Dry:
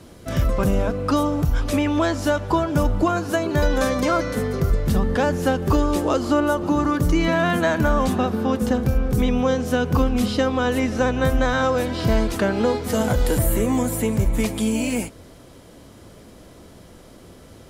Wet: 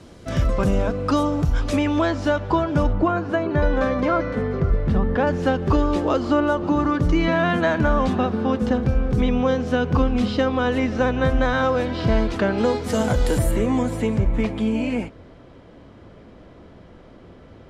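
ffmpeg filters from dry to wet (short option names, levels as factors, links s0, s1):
-af "asetnsamples=n=441:p=0,asendcmd='2.01 lowpass f 4200;2.93 lowpass f 2300;5.27 lowpass f 4100;12.58 lowpass f 8300;13.51 lowpass f 4400;14.19 lowpass f 2600',lowpass=7300"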